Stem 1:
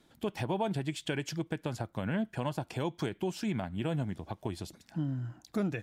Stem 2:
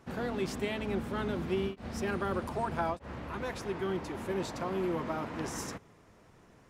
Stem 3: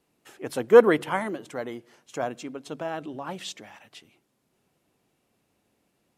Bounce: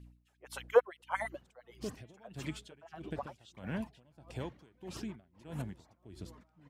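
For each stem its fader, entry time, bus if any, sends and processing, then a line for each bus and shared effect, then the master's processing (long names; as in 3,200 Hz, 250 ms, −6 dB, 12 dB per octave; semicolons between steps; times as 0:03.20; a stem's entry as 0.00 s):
−3.5 dB, 1.60 s, no send, rotating-speaker cabinet horn 0.9 Hz
−6.0 dB, 1.35 s, no send, reverb reduction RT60 1 s; compressor whose output falls as the input rises −46 dBFS, ratio −1
−3.0 dB, 0.00 s, no send, reverb reduction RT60 1 s; auto-filter high-pass sine 8.7 Hz 480–3,600 Hz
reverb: not used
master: mains hum 60 Hz, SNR 23 dB; tremolo with a sine in dB 1.6 Hz, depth 25 dB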